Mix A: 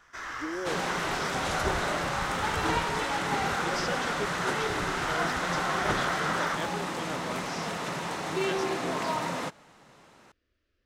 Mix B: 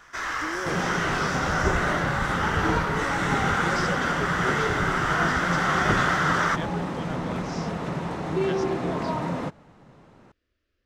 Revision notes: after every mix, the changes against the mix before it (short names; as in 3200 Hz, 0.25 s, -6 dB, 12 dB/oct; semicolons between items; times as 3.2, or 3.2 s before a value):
first sound +8.0 dB; second sound: add tilt -3.5 dB/oct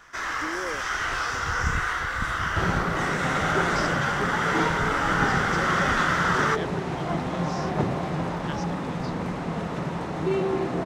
second sound: entry +1.90 s